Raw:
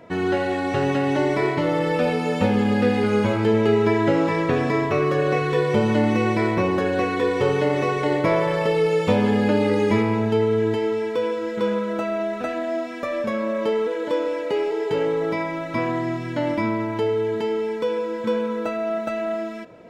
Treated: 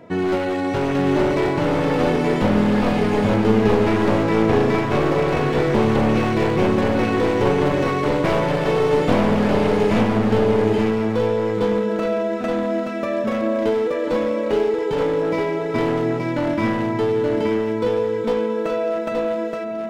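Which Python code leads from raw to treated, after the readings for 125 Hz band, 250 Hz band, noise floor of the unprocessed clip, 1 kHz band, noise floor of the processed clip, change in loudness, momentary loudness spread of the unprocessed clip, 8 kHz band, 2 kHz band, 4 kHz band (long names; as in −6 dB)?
+3.0 dB, +3.0 dB, −29 dBFS, +2.5 dB, −24 dBFS, +2.5 dB, 6 LU, can't be measured, +1.0 dB, +2.0 dB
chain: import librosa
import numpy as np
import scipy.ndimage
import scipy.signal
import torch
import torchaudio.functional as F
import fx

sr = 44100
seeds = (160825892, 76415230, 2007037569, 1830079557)

y = np.minimum(x, 2.0 * 10.0 ** (-19.0 / 20.0) - x)
y = fx.peak_eq(y, sr, hz=220.0, db=5.0, octaves=2.8)
y = y + 10.0 ** (-3.5 / 20.0) * np.pad(y, (int(875 * sr / 1000.0), 0))[:len(y)]
y = y * librosa.db_to_amplitude(-1.0)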